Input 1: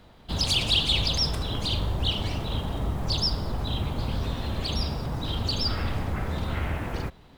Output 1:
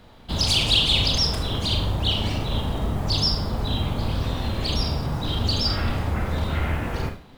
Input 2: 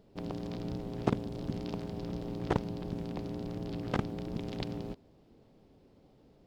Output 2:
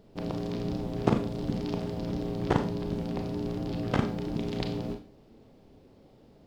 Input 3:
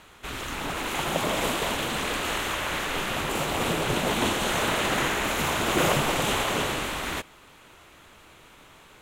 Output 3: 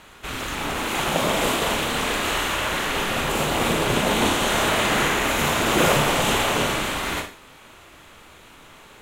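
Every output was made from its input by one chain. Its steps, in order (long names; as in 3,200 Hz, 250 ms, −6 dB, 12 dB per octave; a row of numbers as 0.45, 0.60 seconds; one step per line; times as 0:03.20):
four-comb reverb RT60 0.38 s, combs from 27 ms, DRR 4.5 dB
normalise the peak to −6 dBFS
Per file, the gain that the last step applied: +3.0, +4.0, +3.5 decibels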